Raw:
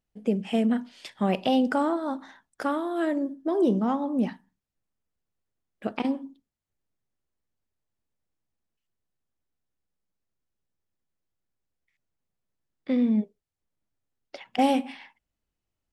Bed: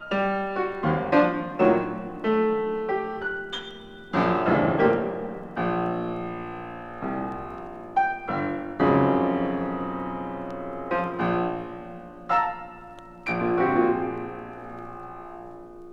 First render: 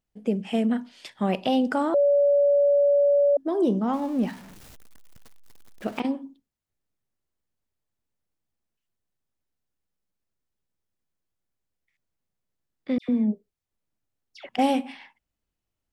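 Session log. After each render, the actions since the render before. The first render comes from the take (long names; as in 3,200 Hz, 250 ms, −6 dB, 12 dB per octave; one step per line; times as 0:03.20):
0:01.94–0:03.37: beep over 571 Hz −16 dBFS
0:03.93–0:06.00: converter with a step at zero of −40 dBFS
0:12.98–0:14.49: all-pass dispersion lows, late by 108 ms, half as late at 1,700 Hz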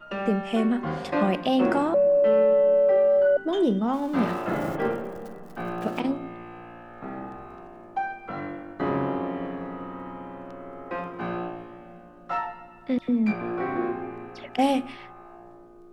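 mix in bed −6.5 dB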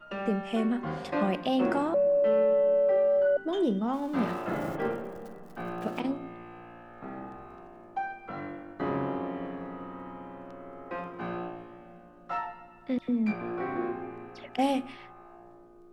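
level −4.5 dB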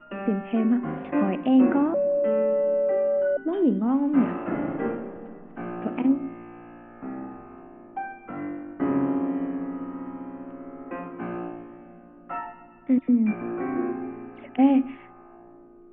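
Butterworth low-pass 2,800 Hz 48 dB per octave
parametric band 270 Hz +11.5 dB 0.52 octaves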